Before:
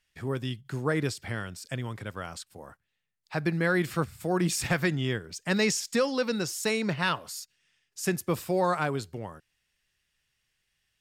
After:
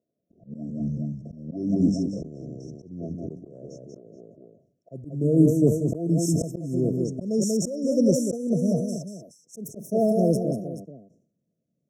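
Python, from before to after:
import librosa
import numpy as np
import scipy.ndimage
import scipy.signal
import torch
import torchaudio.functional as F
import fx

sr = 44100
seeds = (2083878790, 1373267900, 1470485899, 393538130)

p1 = fx.speed_glide(x, sr, from_pct=51, to_pct=134)
p2 = scipy.signal.sosfilt(scipy.signal.butter(4, 150.0, 'highpass', fs=sr, output='sos'), p1)
p3 = fx.env_lowpass(p2, sr, base_hz=2000.0, full_db=-26.0)
p4 = fx.tilt_shelf(p3, sr, db=6.0, hz=710.0)
p5 = p4 + fx.echo_multitap(p4, sr, ms=(188, 426), db=(-7.5, -14.5), dry=0)
p6 = fx.auto_swell(p5, sr, attack_ms=409.0)
p7 = fx.brickwall_bandstop(p6, sr, low_hz=710.0, high_hz=5300.0)
p8 = fx.sustainer(p7, sr, db_per_s=97.0)
y = F.gain(torch.from_numpy(p8), 7.0).numpy()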